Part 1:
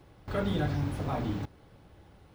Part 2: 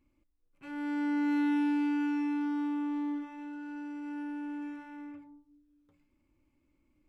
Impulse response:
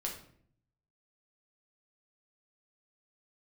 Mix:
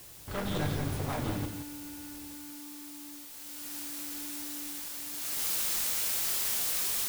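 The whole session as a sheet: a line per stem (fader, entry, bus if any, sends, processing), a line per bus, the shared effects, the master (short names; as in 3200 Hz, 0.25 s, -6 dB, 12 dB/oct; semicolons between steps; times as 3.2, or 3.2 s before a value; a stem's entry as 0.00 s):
-4.0 dB, 0.00 s, no send, echo send -7.5 dB, one-sided fold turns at -29.5 dBFS
3.29 s -23.5 dB -> 3.76 s -16 dB -> 5.1 s -16 dB -> 5.46 s -7 dB, 0.00 s, send -5 dB, no echo send, requantised 6-bit, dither triangular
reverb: on, RT60 0.60 s, pre-delay 6 ms
echo: echo 0.172 s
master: high shelf 3600 Hz +7 dB; AGC gain up to 3 dB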